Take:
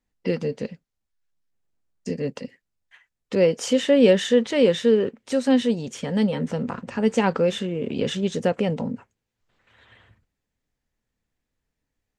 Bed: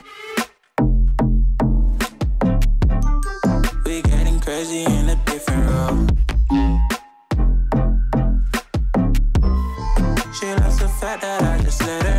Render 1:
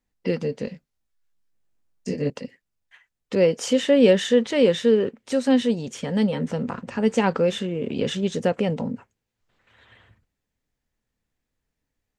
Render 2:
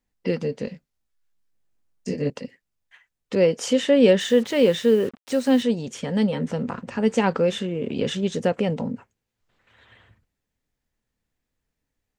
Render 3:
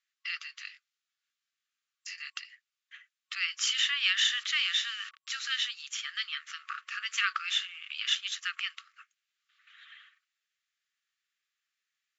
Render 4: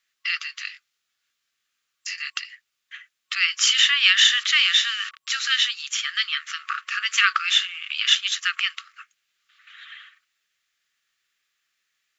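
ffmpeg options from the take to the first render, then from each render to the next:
ffmpeg -i in.wav -filter_complex "[0:a]asettb=1/sr,asplit=3[link_01][link_02][link_03];[link_01]atrim=end=0.654[link_04];[link_02]atrim=start=0.65:end=2.3,asetpts=PTS-STARTPTS,afade=type=in:duration=0.004:curve=qsin,afade=type=out:start_time=1.646:duration=0.004:curve=qsin,asplit=2[link_05][link_06];[link_06]adelay=21,volume=-2.5dB[link_07];[link_05][link_07]amix=inputs=2:normalize=0,atrim=end_sample=72765[link_08];[link_03]atrim=start=2.296[link_09];[link_04][link_08]acrossfade=duration=0.004:curve1=hsin:curve2=qsin[link_10];[link_10][link_09]acrossfade=duration=0.004:curve1=qsin:curve2=hsin" out.wav
ffmpeg -i in.wav -filter_complex "[0:a]asettb=1/sr,asplit=3[link_01][link_02][link_03];[link_01]atrim=end=4.204[link_04];[link_02]atrim=start=4.2:end=5.63,asetpts=PTS-STARTPTS,afade=type=in:duration=0.004:curve=qsin,afade=type=out:start_time=1.426:duration=0.004:curve=qsin,acrusher=bits=6:mix=0:aa=0.5[link_05];[link_03]atrim=start=5.626[link_06];[link_04][link_05]acrossfade=duration=0.004:curve1=hsin:curve2=qsin[link_07];[link_07][link_06]acrossfade=duration=0.004:curve1=qsin:curve2=hsin" out.wav
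ffmpeg -i in.wav -af "afftfilt=real='re*between(b*sr/4096,1100,7600)':imag='im*between(b*sr/4096,1100,7600)':win_size=4096:overlap=0.75,equalizer=frequency=3100:width=1.3:gain=5" out.wav
ffmpeg -i in.wav -af "volume=10.5dB" out.wav

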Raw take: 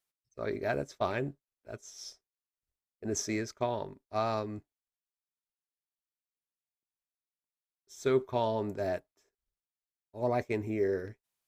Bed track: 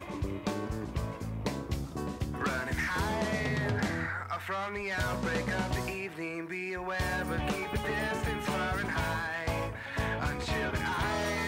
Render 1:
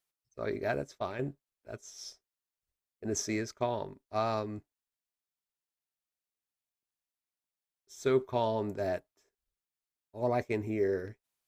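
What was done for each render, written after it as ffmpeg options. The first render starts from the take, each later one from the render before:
ffmpeg -i in.wav -filter_complex "[0:a]asplit=2[link_01][link_02];[link_01]atrim=end=1.19,asetpts=PTS-STARTPTS,afade=type=out:start_time=0.67:duration=0.52:silence=0.421697[link_03];[link_02]atrim=start=1.19,asetpts=PTS-STARTPTS,afade=type=in:duration=0.004:curve=hsin:silence=0.421697[link_04];[link_03][link_04]concat=n=2:v=0:a=1" out.wav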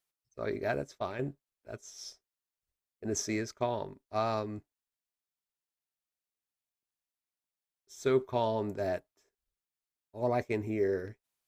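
ffmpeg -i in.wav -af anull out.wav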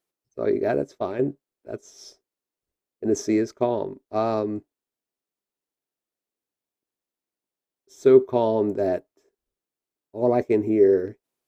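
ffmpeg -i in.wav -af "equalizer=frequency=350:width=0.65:gain=14" out.wav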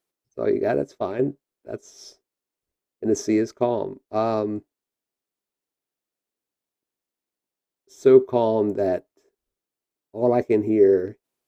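ffmpeg -i in.wav -af "volume=1dB" out.wav

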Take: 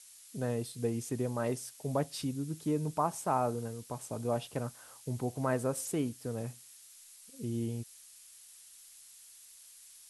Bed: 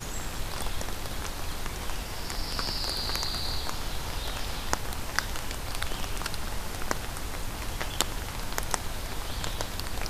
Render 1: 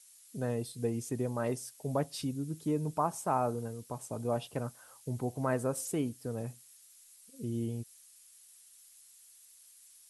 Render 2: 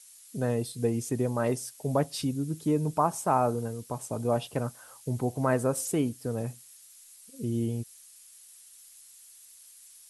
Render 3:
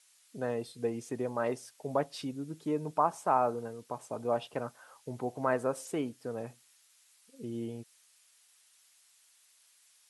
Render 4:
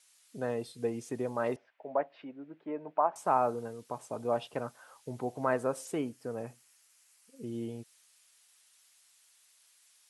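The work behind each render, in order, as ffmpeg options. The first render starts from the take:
ffmpeg -i in.wav -af "afftdn=noise_reduction=6:noise_floor=-56" out.wav
ffmpeg -i in.wav -af "volume=5.5dB" out.wav
ffmpeg -i in.wav -af "highpass=frequency=620:poles=1,aemphasis=mode=reproduction:type=75fm" out.wav
ffmpeg -i in.wav -filter_complex "[0:a]asettb=1/sr,asplit=3[link_01][link_02][link_03];[link_01]atrim=end=1.564[link_04];[link_02]atrim=start=1.56:end=3.16,asetpts=PTS-STARTPTS,afade=type=in:duration=0.004:curve=qsin,afade=type=out:start_time=1.596:duration=0.004:curve=qsin,highpass=380,equalizer=frequency=440:width_type=q:width=4:gain=-5,equalizer=frequency=630:width_type=q:width=4:gain=4,equalizer=frequency=1200:width_type=q:width=4:gain=-4,lowpass=frequency=2300:width=0.5412,lowpass=frequency=2300:width=1.3066[link_05];[link_03]atrim=start=3.156[link_06];[link_04][link_05]acrossfade=duration=0.004:curve1=hsin:curve2=qsin[link_07];[link_07][link_06]acrossfade=duration=0.004:curve1=qsin:curve2=hsin,asettb=1/sr,asplit=3[link_08][link_09][link_10];[link_08]atrim=end=5.974[link_11];[link_09]atrim=start=5.97:end=7.47,asetpts=PTS-STARTPTS,afade=type=in:duration=0.004:curve=qsin,afade=type=out:start_time=1.496:duration=0.004:curve=qsin,equalizer=frequency=3700:width=3.4:gain=-6[link_12];[link_10]atrim=start=7.466[link_13];[link_11][link_12]acrossfade=duration=0.004:curve1=hsin:curve2=qsin[link_14];[link_14][link_13]acrossfade=duration=0.004:curve1=qsin:curve2=hsin" out.wav

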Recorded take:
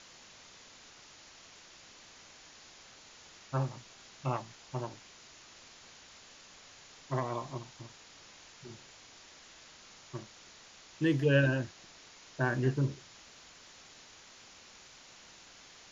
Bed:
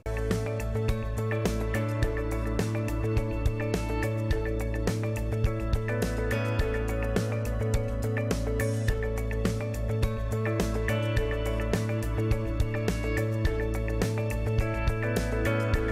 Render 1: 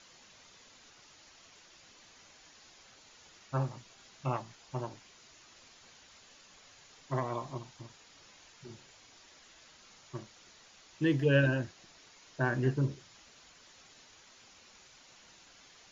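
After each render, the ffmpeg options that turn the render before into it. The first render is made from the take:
ffmpeg -i in.wav -af "afftdn=noise_reduction=6:noise_floor=-56" out.wav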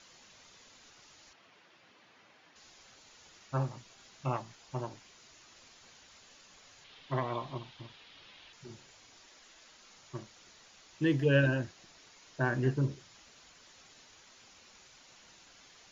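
ffmpeg -i in.wav -filter_complex "[0:a]asettb=1/sr,asplit=3[link_01][link_02][link_03];[link_01]atrim=end=1.334[link_04];[link_02]atrim=start=1.33:end=2.56,asetpts=PTS-STARTPTS,afade=type=in:duration=0.004:curve=qsin,afade=type=out:start_time=1.226:duration=0.004:curve=qsin,highpass=130,lowpass=2900[link_05];[link_03]atrim=start=2.556[link_06];[link_04][link_05]acrossfade=duration=0.004:curve1=hsin:curve2=qsin[link_07];[link_07][link_06]acrossfade=duration=0.004:curve1=qsin:curve2=hsin,asettb=1/sr,asplit=3[link_08][link_09][link_10];[link_08]atrim=end=6.844[link_11];[link_09]atrim=start=6.84:end=8.53,asetpts=PTS-STARTPTS,afade=type=in:duration=0.004:curve=qsin,afade=type=out:start_time=1.686:duration=0.004:curve=qsin,lowpass=frequency=3400:width_type=q:width=2.3[link_12];[link_10]atrim=start=8.526[link_13];[link_11][link_12]acrossfade=duration=0.004:curve1=hsin:curve2=qsin[link_14];[link_14][link_13]acrossfade=duration=0.004:curve1=qsin:curve2=hsin,asettb=1/sr,asplit=3[link_15][link_16][link_17];[link_15]atrim=end=9.264[link_18];[link_16]atrim=start=9.26:end=9.96,asetpts=PTS-STARTPTS,afade=type=in:duration=0.004:curve=qsin,afade=type=out:start_time=0.696:duration=0.004:curve=qsin,equalizer=frequency=100:width=1.5:gain=-12[link_19];[link_17]atrim=start=9.956[link_20];[link_18][link_19]acrossfade=duration=0.004:curve1=hsin:curve2=qsin[link_21];[link_21][link_20]acrossfade=duration=0.004:curve1=qsin:curve2=hsin" out.wav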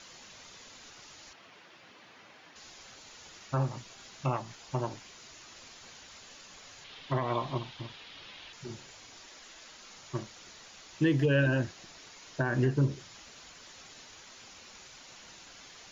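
ffmpeg -i in.wav -af "acontrast=72,alimiter=limit=-18dB:level=0:latency=1:release=161" out.wav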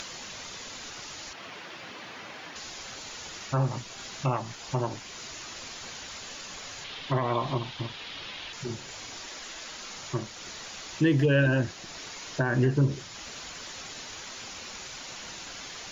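ffmpeg -i in.wav -filter_complex "[0:a]asplit=2[link_01][link_02];[link_02]alimiter=level_in=4dB:limit=-24dB:level=0:latency=1:release=109,volume=-4dB,volume=2.5dB[link_03];[link_01][link_03]amix=inputs=2:normalize=0,acompressor=mode=upward:threshold=-35dB:ratio=2.5" out.wav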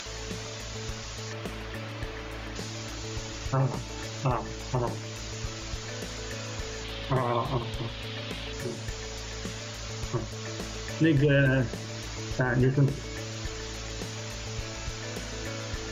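ffmpeg -i in.wav -i bed.wav -filter_complex "[1:a]volume=-10dB[link_01];[0:a][link_01]amix=inputs=2:normalize=0" out.wav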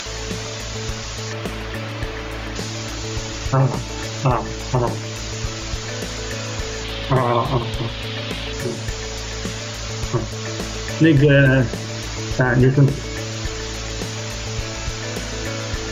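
ffmpeg -i in.wav -af "volume=9.5dB" out.wav

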